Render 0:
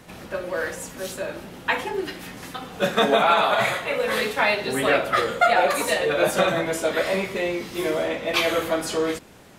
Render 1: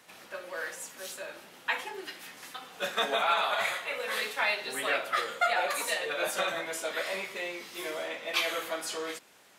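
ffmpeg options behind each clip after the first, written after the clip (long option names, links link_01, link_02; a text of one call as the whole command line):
ffmpeg -i in.wav -af "highpass=frequency=1200:poles=1,volume=-5dB" out.wav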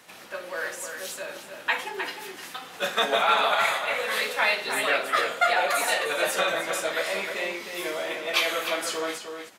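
ffmpeg -i in.wav -filter_complex "[0:a]asplit=2[link_01][link_02];[link_02]adelay=309,volume=-6dB,highshelf=frequency=4000:gain=-6.95[link_03];[link_01][link_03]amix=inputs=2:normalize=0,volume=5dB" out.wav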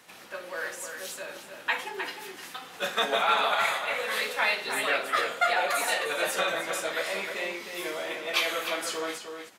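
ffmpeg -i in.wav -af "equalizer=frequency=620:width=8:gain=-2.5,volume=-2.5dB" out.wav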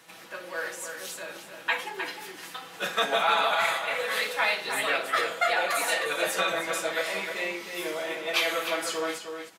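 ffmpeg -i in.wav -af "aecho=1:1:6.1:0.44" out.wav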